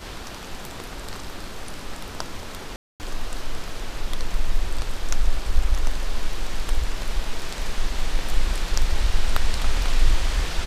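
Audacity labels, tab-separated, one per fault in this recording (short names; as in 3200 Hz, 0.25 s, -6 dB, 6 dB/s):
2.760000	3.000000	gap 0.239 s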